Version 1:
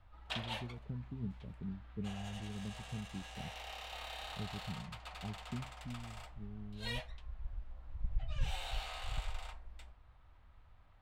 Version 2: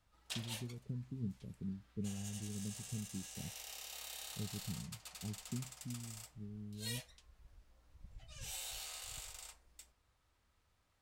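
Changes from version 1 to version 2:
background: add tilt EQ +4 dB/octave; master: add high-order bell 1.6 kHz -11 dB 3 oct

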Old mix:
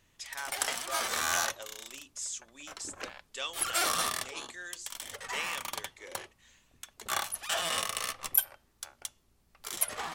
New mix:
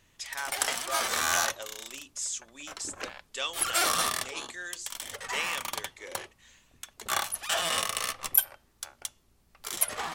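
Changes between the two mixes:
speech +4.0 dB; background +3.0 dB

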